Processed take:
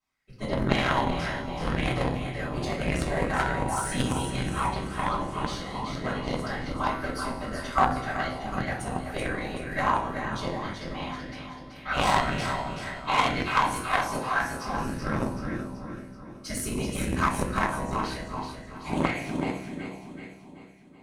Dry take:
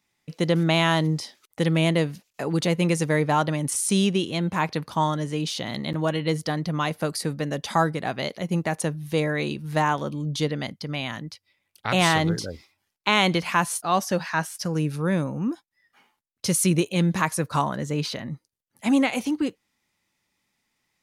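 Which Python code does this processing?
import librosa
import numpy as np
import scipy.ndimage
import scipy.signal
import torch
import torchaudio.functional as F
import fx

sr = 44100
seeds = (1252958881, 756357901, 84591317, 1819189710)

p1 = fx.low_shelf(x, sr, hz=140.0, db=-5.0)
p2 = fx.whisperise(p1, sr, seeds[0])
p3 = fx.comb_fb(p2, sr, f0_hz=64.0, decay_s=1.5, harmonics='all', damping=0.0, mix_pct=70)
p4 = p3 + fx.echo_feedback(p3, sr, ms=380, feedback_pct=52, wet_db=-6, dry=0)
p5 = fx.room_shoebox(p4, sr, seeds[1], volume_m3=39.0, walls='mixed', distance_m=2.8)
p6 = fx.cheby_harmonics(p5, sr, harmonics=(2, 3, 8), levels_db=(-9, -15, -29), full_scale_db=-0.5)
p7 = fx.bell_lfo(p6, sr, hz=1.9, low_hz=890.0, high_hz=1800.0, db=10)
y = F.gain(torch.from_numpy(p7), -7.5).numpy()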